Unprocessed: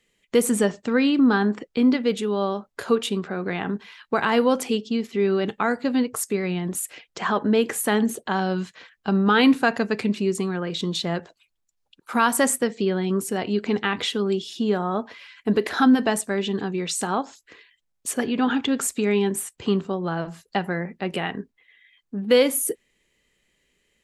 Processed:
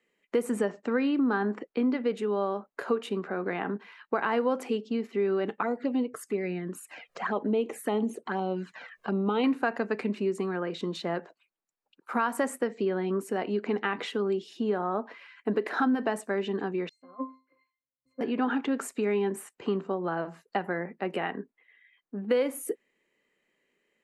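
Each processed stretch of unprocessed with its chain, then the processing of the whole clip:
5.61–9.44 s: touch-sensitive flanger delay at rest 2.1 ms, full sweep at -19 dBFS + upward compressor, threshold -29 dBFS
16.89–18.21 s: upward compressor, threshold -28 dBFS + pitch-class resonator C, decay 0.36 s + three bands expanded up and down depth 100%
whole clip: three-band isolator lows -23 dB, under 200 Hz, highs -13 dB, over 2.3 kHz; band-stop 3.4 kHz, Q 14; compression 2.5:1, threshold -23 dBFS; trim -1.5 dB

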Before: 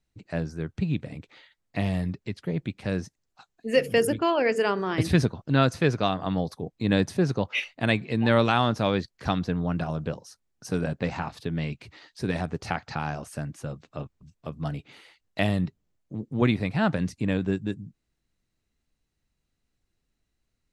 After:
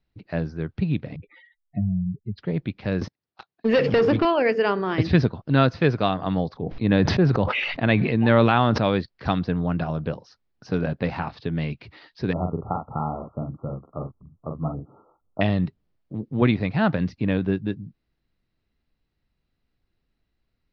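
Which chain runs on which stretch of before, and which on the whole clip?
1.16–2.38 s: spectral contrast enhancement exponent 3.2 + low-pass 4.3 kHz
3.01–4.25 s: high-pass 89 Hz 24 dB/octave + waveshaping leveller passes 3 + compression 5:1, threshold -19 dBFS
6.49–8.83 s: tone controls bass +1 dB, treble -8 dB + decay stretcher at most 34 dB/s
12.33–15.41 s: brick-wall FIR low-pass 1.4 kHz + doubling 44 ms -5 dB
whole clip: steep low-pass 5.2 kHz 48 dB/octave; treble shelf 4 kHz -5.5 dB; trim +3 dB

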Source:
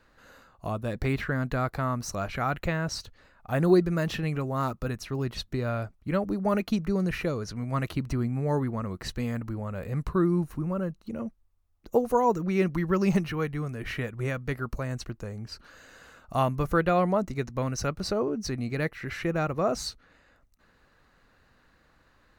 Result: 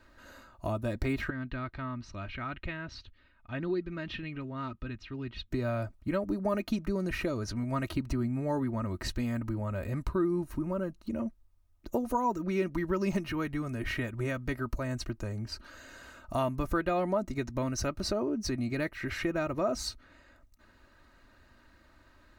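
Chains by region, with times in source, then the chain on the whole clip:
1.30–5.51 s: four-pole ladder low-pass 4 kHz, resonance 35% + peaking EQ 670 Hz -8.5 dB 1.4 oct
whole clip: peaking EQ 110 Hz +4 dB 1.9 oct; comb 3.2 ms, depth 62%; compression 2:1, threshold -31 dBFS

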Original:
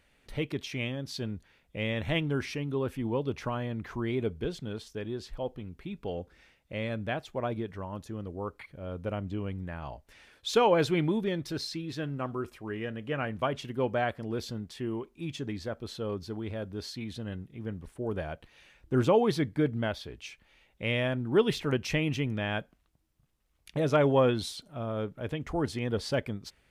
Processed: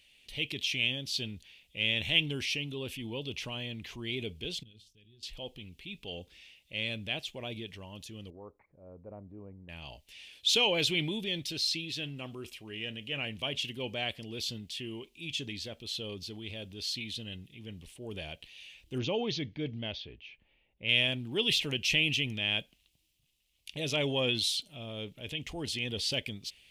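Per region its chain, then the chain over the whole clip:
4.63–5.23 s: amplifier tone stack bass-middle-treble 10-0-1 + hum notches 50/100/150/200/250/300/350/400 Hz
8.30–9.69 s: inverse Chebyshev low-pass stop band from 2.9 kHz, stop band 50 dB + bass shelf 280 Hz -9 dB
18.98–20.89 s: level-controlled noise filter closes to 1.2 kHz, open at -23 dBFS + brick-wall FIR low-pass 6.8 kHz + treble shelf 2.1 kHz -8.5 dB
whole clip: resonant high shelf 2 kHz +12.5 dB, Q 3; transient shaper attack -3 dB, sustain +3 dB; trim -7.5 dB

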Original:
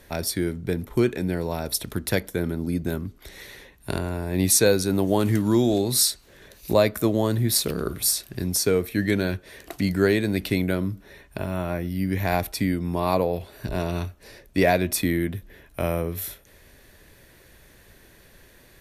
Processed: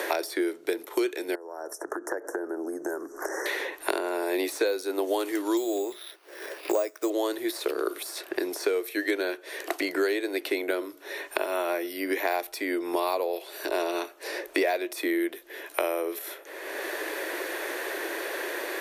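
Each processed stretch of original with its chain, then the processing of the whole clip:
1.35–3.46 s: distance through air 67 m + compression, threshold -40 dBFS + Chebyshev band-stop 1.7–5.8 kHz, order 4
5.57–7.10 s: careless resampling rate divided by 6×, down filtered, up hold + treble shelf 9.8 kHz +6 dB + upward expansion, over -33 dBFS
whole clip: de-esser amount 50%; elliptic high-pass 330 Hz, stop band 40 dB; three bands compressed up and down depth 100%

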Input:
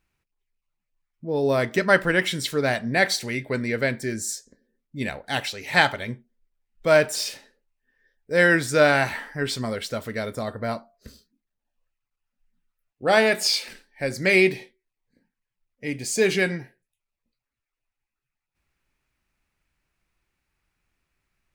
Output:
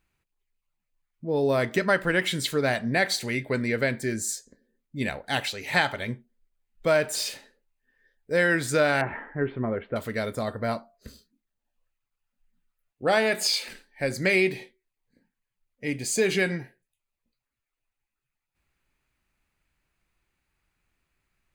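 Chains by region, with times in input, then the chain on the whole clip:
9.01–9.96 s: Bessel low-pass 1.4 kHz, order 8 + peaking EQ 360 Hz +6.5 dB 0.34 oct
whole clip: compression 2.5:1, threshold -20 dBFS; band-stop 5.5 kHz, Q 9.8

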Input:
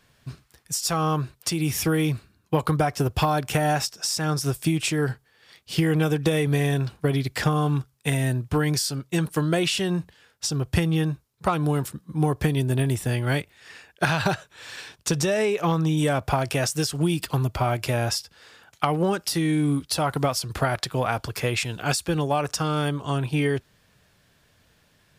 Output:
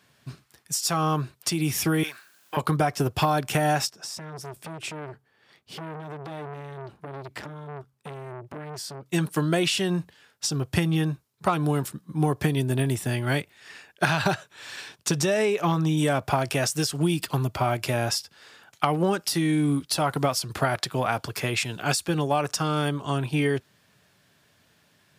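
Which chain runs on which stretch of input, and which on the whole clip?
2.03–2.57 s: high-pass 860 Hz + peaking EQ 1.6 kHz +14 dB 0.35 oct + word length cut 10-bit, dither triangular
3.90–9.06 s: treble shelf 2.1 kHz -11 dB + compression 5:1, threshold -27 dBFS + transformer saturation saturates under 1.3 kHz
whole clip: high-pass 120 Hz; band-stop 490 Hz, Q 12

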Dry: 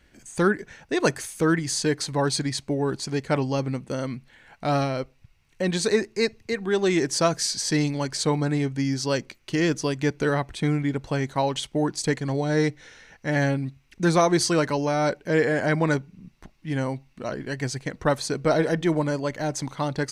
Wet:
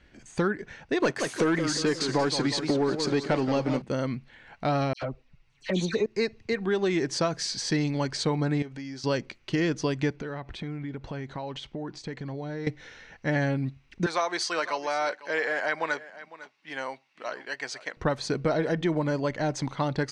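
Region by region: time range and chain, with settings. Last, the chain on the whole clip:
1.02–3.82 s: high-pass 190 Hz + waveshaping leveller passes 2 + modulated delay 178 ms, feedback 53%, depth 192 cents, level -10 dB
4.93–6.06 s: phase dispersion lows, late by 91 ms, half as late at 2.2 kHz + touch-sensitive flanger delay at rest 8.1 ms, full sweep at -20.5 dBFS
8.62–9.04 s: peaking EQ 64 Hz -14.5 dB 2.8 oct + compression 4:1, threshold -37 dBFS
10.16–12.67 s: compression, threshold -33 dBFS + distance through air 71 m
14.06–17.97 s: high-pass 750 Hz + delay 503 ms -18 dB
whole clip: compression, threshold -23 dBFS; low-pass 4.8 kHz 12 dB/octave; trim +1 dB

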